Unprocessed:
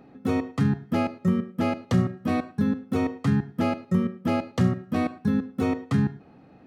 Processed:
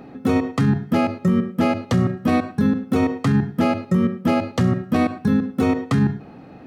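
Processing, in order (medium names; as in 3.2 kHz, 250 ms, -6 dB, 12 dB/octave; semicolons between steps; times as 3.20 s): hum notches 50/100/150/200 Hz; loudness maximiser +19.5 dB; trim -9 dB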